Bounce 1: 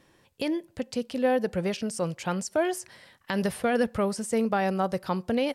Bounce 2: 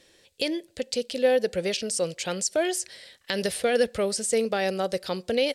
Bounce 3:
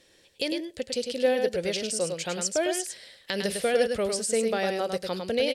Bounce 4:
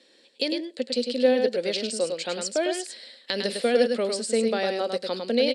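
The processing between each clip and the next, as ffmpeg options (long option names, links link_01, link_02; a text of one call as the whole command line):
ffmpeg -i in.wav -af "equalizer=frequency=125:width_type=o:width=1:gain=-8,equalizer=frequency=250:width_type=o:width=1:gain=-4,equalizer=frequency=500:width_type=o:width=1:gain=7,equalizer=frequency=1000:width_type=o:width=1:gain=-10,equalizer=frequency=2000:width_type=o:width=1:gain=3,equalizer=frequency=4000:width_type=o:width=1:gain=9,equalizer=frequency=8000:width_type=o:width=1:gain=8" out.wav
ffmpeg -i in.wav -af "aecho=1:1:103:0.531,volume=-2dB" out.wav
ffmpeg -i in.wav -af "highpass=frequency=220:width=0.5412,highpass=frequency=220:width=1.3066,equalizer=frequency=240:width_type=q:width=4:gain=10,equalizer=frequency=520:width_type=q:width=4:gain=3,equalizer=frequency=4200:width_type=q:width=4:gain=8,equalizer=frequency=6200:width_type=q:width=4:gain=-8,lowpass=frequency=8800:width=0.5412,lowpass=frequency=8800:width=1.3066" out.wav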